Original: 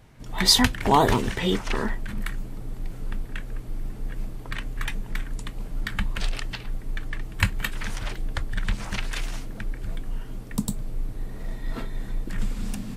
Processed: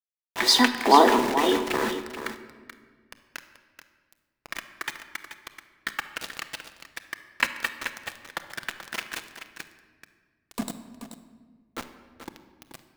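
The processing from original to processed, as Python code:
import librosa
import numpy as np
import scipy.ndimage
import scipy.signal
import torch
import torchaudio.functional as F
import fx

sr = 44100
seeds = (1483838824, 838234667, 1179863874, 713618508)

y = scipy.signal.sosfilt(scipy.signal.cheby1(8, 1.0, 220.0, 'highpass', fs=sr, output='sos'), x)
y = fx.high_shelf(y, sr, hz=5400.0, db=-11.0)
y = np.where(np.abs(y) >= 10.0 ** (-31.0 / 20.0), y, 0.0)
y = y + 10.0 ** (-10.5 / 20.0) * np.pad(y, (int(432 * sr / 1000.0), 0))[:len(y)]
y = fx.room_shoebox(y, sr, seeds[0], volume_m3=1800.0, walls='mixed', distance_m=0.71)
y = F.gain(torch.from_numpy(y), 3.5).numpy()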